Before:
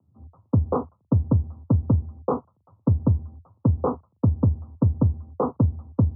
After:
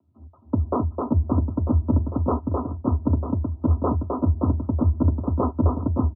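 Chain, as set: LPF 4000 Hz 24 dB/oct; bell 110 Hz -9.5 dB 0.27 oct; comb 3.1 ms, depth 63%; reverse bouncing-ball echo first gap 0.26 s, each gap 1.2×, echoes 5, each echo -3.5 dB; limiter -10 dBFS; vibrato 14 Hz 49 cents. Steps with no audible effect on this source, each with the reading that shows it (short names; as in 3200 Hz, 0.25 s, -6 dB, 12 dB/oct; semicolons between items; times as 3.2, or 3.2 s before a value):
LPF 4000 Hz: input band ends at 1100 Hz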